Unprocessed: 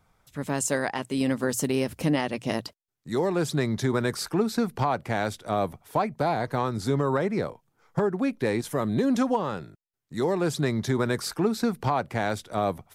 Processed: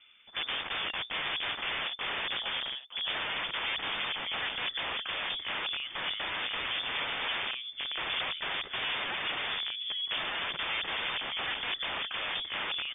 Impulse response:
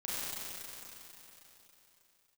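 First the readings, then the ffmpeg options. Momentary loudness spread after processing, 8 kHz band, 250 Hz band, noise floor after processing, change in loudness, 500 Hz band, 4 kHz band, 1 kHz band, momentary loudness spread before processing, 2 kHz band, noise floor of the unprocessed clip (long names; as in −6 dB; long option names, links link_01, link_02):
2 LU, below −40 dB, −25.5 dB, −46 dBFS, −5.0 dB, −19.0 dB, +9.5 dB, −8.5 dB, 6 LU, +2.5 dB, −75 dBFS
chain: -filter_complex "[0:a]highpass=81,lowshelf=frequency=240:gain=3,asplit=2[link_01][link_02];[link_02]acompressor=threshold=-35dB:ratio=8,volume=1dB[link_03];[link_01][link_03]amix=inputs=2:normalize=0,aecho=1:1:913|1826|2739:0.178|0.0533|0.016,aresample=16000,aeval=exprs='(mod(22.4*val(0)+1,2)-1)/22.4':channel_layout=same,aresample=44100,lowpass=frequency=3100:width_type=q:width=0.5098,lowpass=frequency=3100:width_type=q:width=0.6013,lowpass=frequency=3100:width_type=q:width=0.9,lowpass=frequency=3100:width_type=q:width=2.563,afreqshift=-3600,acontrast=47,volume=-6dB"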